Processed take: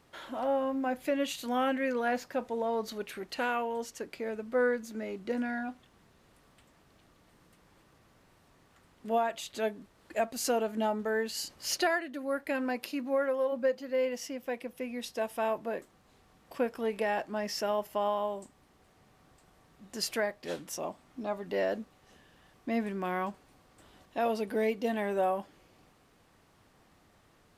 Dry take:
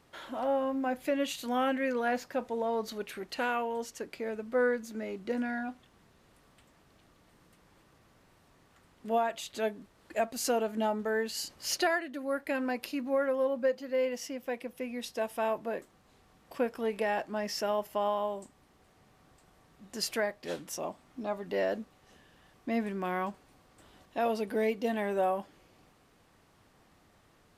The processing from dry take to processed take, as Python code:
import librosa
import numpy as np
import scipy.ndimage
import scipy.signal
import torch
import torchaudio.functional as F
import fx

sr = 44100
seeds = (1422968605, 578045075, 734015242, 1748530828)

y = fx.highpass(x, sr, hz=fx.line((12.78, 100.0), (13.51, 390.0)), slope=12, at=(12.78, 13.51), fade=0.02)